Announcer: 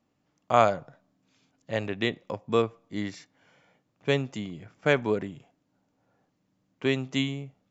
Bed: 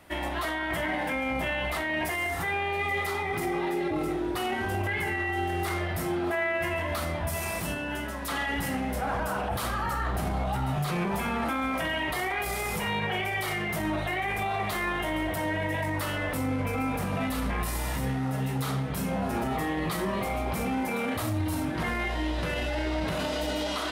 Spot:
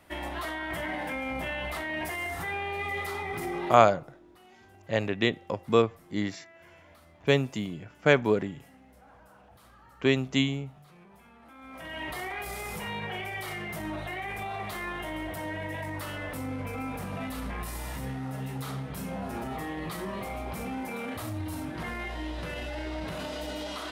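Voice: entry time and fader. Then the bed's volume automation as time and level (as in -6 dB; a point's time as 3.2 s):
3.20 s, +2.0 dB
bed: 3.71 s -4 dB
4 s -26 dB
11.42 s -26 dB
12.03 s -6 dB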